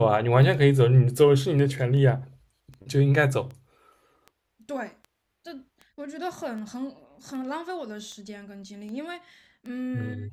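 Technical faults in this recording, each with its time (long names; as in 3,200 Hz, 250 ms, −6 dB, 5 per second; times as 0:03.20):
scratch tick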